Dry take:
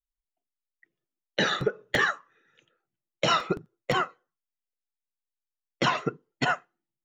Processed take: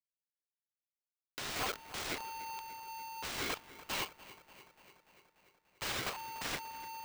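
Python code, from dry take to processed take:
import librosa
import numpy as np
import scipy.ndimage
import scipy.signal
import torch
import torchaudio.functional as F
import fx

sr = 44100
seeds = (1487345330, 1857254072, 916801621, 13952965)

y = fx.delta_hold(x, sr, step_db=-40.0)
y = fx.peak_eq(y, sr, hz=4100.0, db=12.5, octaves=2.3)
y = (np.mod(10.0 ** (13.5 / 20.0) * y + 1.0, 2.0) - 1.0) / 10.0 ** (13.5 / 20.0)
y = fx.ladder_highpass(y, sr, hz=1700.0, resonance_pct=70, at=(3.54, 5.92))
y = 10.0 ** (-30.5 / 20.0) * (np.abs((y / 10.0 ** (-30.5 / 20.0) + 3.0) % 4.0 - 2.0) - 1.0)
y = fx.air_absorb(y, sr, metres=120.0)
y = fx.echo_bbd(y, sr, ms=292, stages=4096, feedback_pct=69, wet_db=-16)
y = y * np.sign(np.sin(2.0 * np.pi * 900.0 * np.arange(len(y)) / sr))
y = y * 10.0 ** (1.5 / 20.0)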